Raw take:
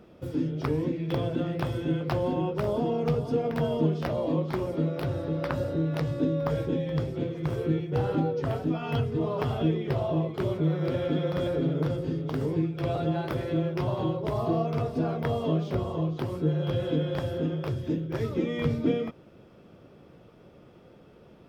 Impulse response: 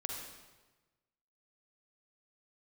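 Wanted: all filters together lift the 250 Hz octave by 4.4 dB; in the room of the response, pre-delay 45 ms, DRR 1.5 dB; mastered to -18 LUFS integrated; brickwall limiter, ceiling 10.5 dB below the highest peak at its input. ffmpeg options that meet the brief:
-filter_complex "[0:a]equalizer=f=250:t=o:g=6.5,alimiter=limit=0.119:level=0:latency=1,asplit=2[s0][s1];[1:a]atrim=start_sample=2205,adelay=45[s2];[s1][s2]afir=irnorm=-1:irlink=0,volume=0.794[s3];[s0][s3]amix=inputs=2:normalize=0,volume=2.51"

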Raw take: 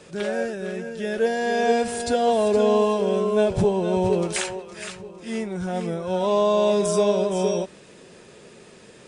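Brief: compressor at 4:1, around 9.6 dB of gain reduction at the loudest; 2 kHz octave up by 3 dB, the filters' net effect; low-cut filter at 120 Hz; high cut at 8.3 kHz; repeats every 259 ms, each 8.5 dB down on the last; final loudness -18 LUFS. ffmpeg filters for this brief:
-af "highpass=120,lowpass=8300,equalizer=f=2000:t=o:g=4,acompressor=threshold=0.0447:ratio=4,aecho=1:1:259|518|777|1036:0.376|0.143|0.0543|0.0206,volume=3.76"

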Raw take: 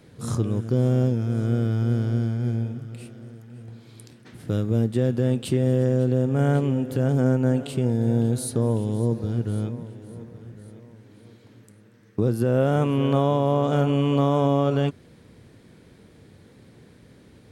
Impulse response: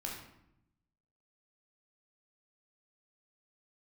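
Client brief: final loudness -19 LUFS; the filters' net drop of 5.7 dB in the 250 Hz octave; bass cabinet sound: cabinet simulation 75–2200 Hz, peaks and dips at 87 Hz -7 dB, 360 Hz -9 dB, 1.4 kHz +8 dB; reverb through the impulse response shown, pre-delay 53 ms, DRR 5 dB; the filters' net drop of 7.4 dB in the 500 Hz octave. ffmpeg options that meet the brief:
-filter_complex "[0:a]equalizer=f=250:t=o:g=-4,equalizer=f=500:t=o:g=-5.5,asplit=2[s0][s1];[1:a]atrim=start_sample=2205,adelay=53[s2];[s1][s2]afir=irnorm=-1:irlink=0,volume=0.531[s3];[s0][s3]amix=inputs=2:normalize=0,highpass=f=75:w=0.5412,highpass=f=75:w=1.3066,equalizer=f=87:t=q:w=4:g=-7,equalizer=f=360:t=q:w=4:g=-9,equalizer=f=1400:t=q:w=4:g=8,lowpass=f=2200:w=0.5412,lowpass=f=2200:w=1.3066,volume=2"

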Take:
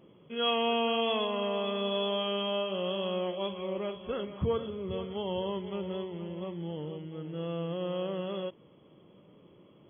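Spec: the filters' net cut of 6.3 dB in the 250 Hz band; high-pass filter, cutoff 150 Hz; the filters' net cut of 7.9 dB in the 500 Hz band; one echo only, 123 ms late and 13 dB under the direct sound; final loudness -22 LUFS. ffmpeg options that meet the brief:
-af "highpass=150,equalizer=f=250:t=o:g=-5.5,equalizer=f=500:t=o:g=-8.5,aecho=1:1:123:0.224,volume=5.31"

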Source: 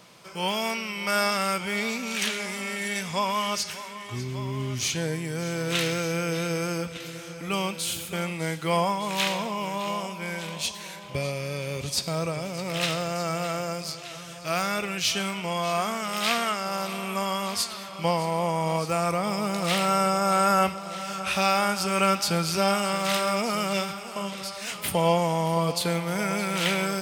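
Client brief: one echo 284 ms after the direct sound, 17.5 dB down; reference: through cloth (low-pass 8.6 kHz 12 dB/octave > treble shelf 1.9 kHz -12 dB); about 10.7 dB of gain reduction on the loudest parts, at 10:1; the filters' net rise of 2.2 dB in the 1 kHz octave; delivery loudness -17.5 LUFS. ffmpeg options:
-af "equalizer=f=1000:t=o:g=6.5,acompressor=threshold=0.0562:ratio=10,lowpass=8600,highshelf=f=1900:g=-12,aecho=1:1:284:0.133,volume=5.62"

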